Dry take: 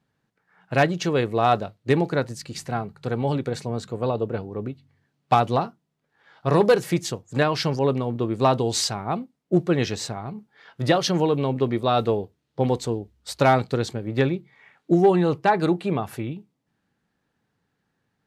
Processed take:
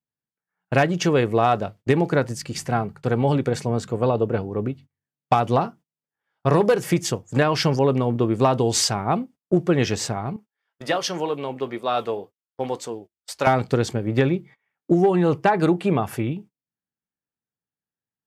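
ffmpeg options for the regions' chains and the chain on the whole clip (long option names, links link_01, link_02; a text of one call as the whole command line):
ffmpeg -i in.wav -filter_complex "[0:a]asettb=1/sr,asplit=3[link_01][link_02][link_03];[link_01]atrim=end=10.364[link_04];[link_02]atrim=start=10.36:end=13.47,asetpts=PTS-STARTPTS,afade=type=in:duration=0.004:curve=qsin,afade=type=out:start_time=3.106:duration=0.004:curve=qsin,highpass=frequency=630:poles=1,flanger=delay=4.2:depth=3:regen=-80:speed=2:shape=sinusoidal[link_05];[link_03]atrim=start=13.466[link_06];[link_04][link_05]acrossfade=duration=0.004:curve1=hsin:curve2=qsin[link_07];[link_07][link_06]acrossfade=duration=0.004:curve1=qsin:curve2=hsin,agate=range=-28dB:threshold=-45dB:ratio=16:detection=peak,equalizer=frequency=4000:width=7:gain=-9,acompressor=threshold=-19dB:ratio=6,volume=5dB" out.wav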